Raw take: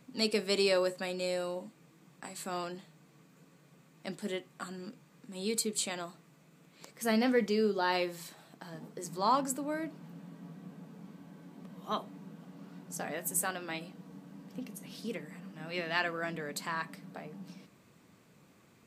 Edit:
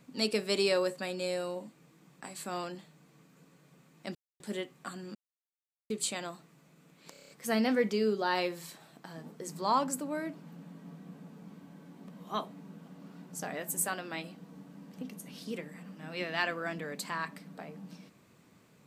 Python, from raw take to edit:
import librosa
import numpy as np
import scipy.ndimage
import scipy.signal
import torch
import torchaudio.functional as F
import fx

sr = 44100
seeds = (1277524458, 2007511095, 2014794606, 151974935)

y = fx.edit(x, sr, fx.insert_silence(at_s=4.15, length_s=0.25),
    fx.silence(start_s=4.9, length_s=0.75),
    fx.stutter(start_s=6.86, slice_s=0.03, count=7), tone=tone)